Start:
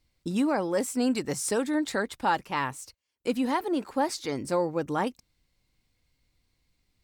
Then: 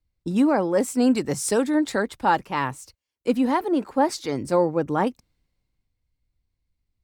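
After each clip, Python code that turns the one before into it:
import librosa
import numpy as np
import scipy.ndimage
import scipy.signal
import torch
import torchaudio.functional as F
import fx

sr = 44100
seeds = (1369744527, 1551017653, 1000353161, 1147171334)

y = fx.tilt_shelf(x, sr, db=3.0, hz=1500.0)
y = fx.band_widen(y, sr, depth_pct=40)
y = F.gain(torch.from_numpy(y), 3.5).numpy()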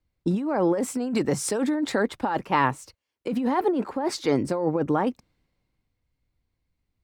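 y = fx.high_shelf(x, sr, hz=4000.0, db=-10.5)
y = fx.over_compress(y, sr, threshold_db=-25.0, ratio=-1.0)
y = fx.low_shelf(y, sr, hz=96.0, db=-10.0)
y = F.gain(torch.from_numpy(y), 2.5).numpy()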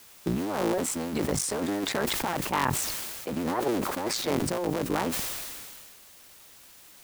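y = fx.cycle_switch(x, sr, every=3, mode='muted')
y = fx.quant_dither(y, sr, seeds[0], bits=8, dither='triangular')
y = fx.sustainer(y, sr, db_per_s=27.0)
y = F.gain(torch.from_numpy(y), -4.0).numpy()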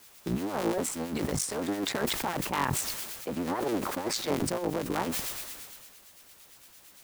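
y = fx.harmonic_tremolo(x, sr, hz=8.8, depth_pct=50, crossover_hz=1600.0)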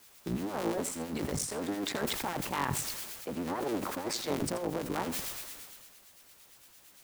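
y = x + 10.0 ** (-13.0 / 20.0) * np.pad(x, (int(83 * sr / 1000.0), 0))[:len(x)]
y = F.gain(torch.from_numpy(y), -3.5).numpy()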